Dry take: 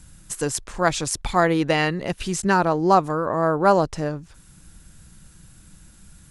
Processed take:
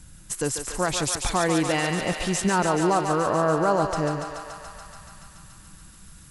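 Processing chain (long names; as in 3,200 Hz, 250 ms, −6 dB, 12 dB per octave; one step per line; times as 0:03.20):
brickwall limiter −13.5 dBFS, peak gain reduction 8.5 dB
on a send: feedback echo with a high-pass in the loop 143 ms, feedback 84%, high-pass 490 Hz, level −6 dB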